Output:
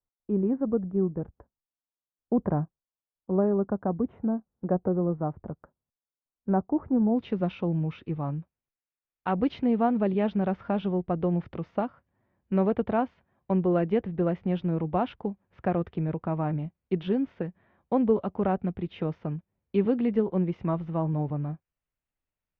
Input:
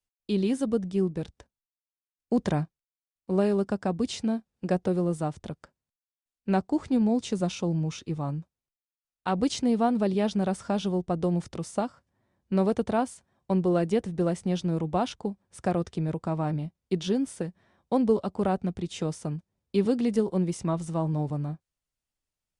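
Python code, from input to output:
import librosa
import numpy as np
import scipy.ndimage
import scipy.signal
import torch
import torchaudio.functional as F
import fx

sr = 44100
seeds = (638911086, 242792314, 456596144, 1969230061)

y = fx.cheby2_lowpass(x, sr, hz=fx.steps((0.0, 4300.0), (7.15, 8200.0)), order=4, stop_db=60)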